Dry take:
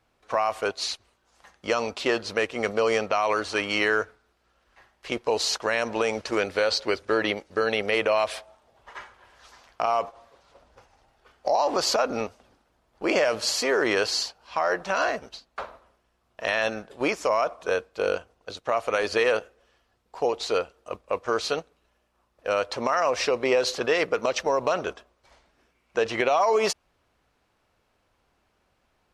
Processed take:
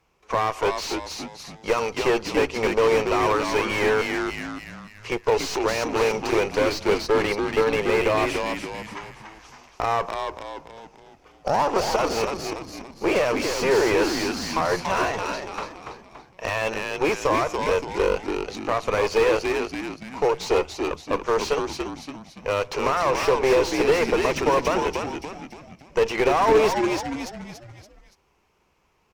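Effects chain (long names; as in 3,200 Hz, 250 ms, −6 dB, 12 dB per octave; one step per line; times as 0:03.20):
EQ curve with evenly spaced ripples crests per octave 0.77, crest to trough 7 dB
harmonic generator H 2 −9 dB, 8 −18 dB, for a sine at −7.5 dBFS
on a send: echo with shifted repeats 285 ms, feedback 44%, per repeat −80 Hz, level −6.5 dB
on the sum: slew-rate limiting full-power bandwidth 120 Hz
level +2 dB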